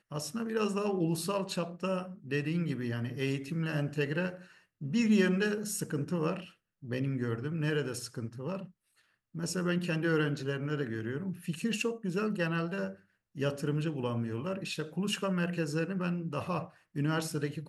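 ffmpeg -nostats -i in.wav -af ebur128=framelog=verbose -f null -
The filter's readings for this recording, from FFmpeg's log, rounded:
Integrated loudness:
  I:         -33.2 LUFS
  Threshold: -43.5 LUFS
Loudness range:
  LRA:         3.3 LU
  Threshold: -53.5 LUFS
  LRA low:   -35.0 LUFS
  LRA high:  -31.7 LUFS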